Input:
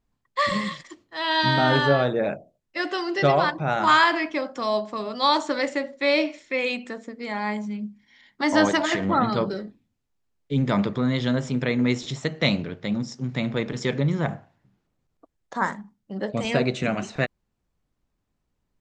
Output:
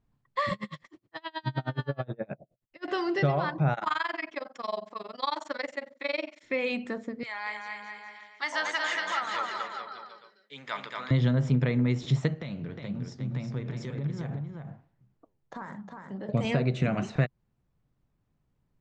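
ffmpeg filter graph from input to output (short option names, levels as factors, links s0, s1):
-filter_complex "[0:a]asettb=1/sr,asplit=3[s0][s1][s2];[s0]atrim=end=0.534[s3];[s1]atrim=start=0.53:end=2.88,asetpts=PTS-STARTPTS,afade=t=in:d=0.004:c=qsin,afade=t=out:st=2.346:d=0.004:c=qsin,acompressor=threshold=0.0398:ratio=3:attack=3.2:release=140:knee=1:detection=peak,aeval=exprs='val(0)*pow(10,-35*(0.5-0.5*cos(2*PI*9.5*n/s))/20)':c=same[s4];[s2]atrim=start=2.876[s5];[s3][s4]acrossfade=d=0.004:c1=hsin:c2=qsin[s6];[s6][s5]acrossfade=d=0.004:c1=qsin:c2=hsin,asettb=1/sr,asplit=3[s7][s8][s9];[s7]atrim=end=3.744[s10];[s8]atrim=start=3.74:end=6.43,asetpts=PTS-STARTPTS,afade=t=in:d=0.004:c=qsin,afade=t=out:st=2.686:d=0.004:c=qsin,highpass=f=960:p=1,tremolo=f=22:d=0.974[s11];[s9]atrim=start=6.426[s12];[s10][s11]acrossfade=d=0.004:c1=hsin:c2=qsin[s13];[s13][s12]acrossfade=d=0.004:c1=qsin:c2=hsin,asettb=1/sr,asplit=3[s14][s15][s16];[s14]atrim=end=7.234[s17];[s15]atrim=start=7.23:end=11.11,asetpts=PTS-STARTPTS,afade=t=in:d=0.004:c=qsin,afade=t=out:st=3.876:d=0.004:c=qsin,highpass=1400,aecho=1:1:230|425.5|591.7|732.9|853:0.631|0.398|0.251|0.158|0.1,atrim=end_sample=171108[s18];[s16]atrim=start=11.106[s19];[s17][s18]acrossfade=d=0.004:c1=hsin:c2=qsin[s20];[s20][s19]acrossfade=d=0.004:c1=qsin:c2=hsin,asettb=1/sr,asplit=3[s21][s22][s23];[s21]atrim=end=12.344[s24];[s22]atrim=start=12.34:end=16.29,asetpts=PTS-STARTPTS,afade=t=in:d=0.004:c=qsin,afade=t=out:st=3.946:d=0.004:c=qsin,acompressor=threshold=0.0316:ratio=12:attack=3.2:release=140:knee=1:detection=peak,flanger=delay=4.4:depth=8.4:regen=86:speed=1.8:shape=triangular,aecho=1:1:360:0.562,atrim=end_sample=174195[s25];[s23]atrim=start=16.286[s26];[s24][s25]acrossfade=d=0.004:c1=hsin:c2=qsin[s27];[s27][s26]acrossfade=d=0.004:c1=qsin:c2=hsin,highshelf=f=4300:g=-11.5,acompressor=threshold=0.0562:ratio=6,equalizer=f=130:t=o:w=0.75:g=9.5"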